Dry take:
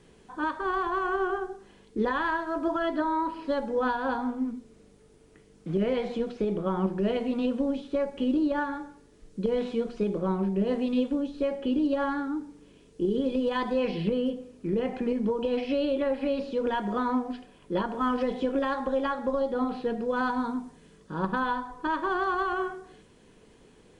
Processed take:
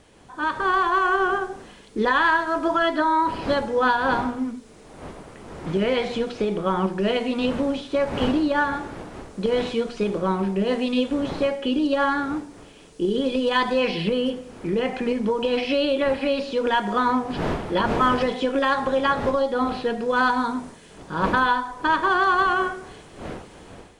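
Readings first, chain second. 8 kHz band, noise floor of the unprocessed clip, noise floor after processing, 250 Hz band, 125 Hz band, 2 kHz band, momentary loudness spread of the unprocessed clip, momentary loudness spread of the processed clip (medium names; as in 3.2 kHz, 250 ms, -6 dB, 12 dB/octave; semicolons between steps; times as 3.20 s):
no reading, -57 dBFS, -47 dBFS, +3.0 dB, +4.5 dB, +10.5 dB, 7 LU, 14 LU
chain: wind noise 410 Hz -41 dBFS; level rider gain up to 7.5 dB; tilt shelf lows -5.5 dB, about 820 Hz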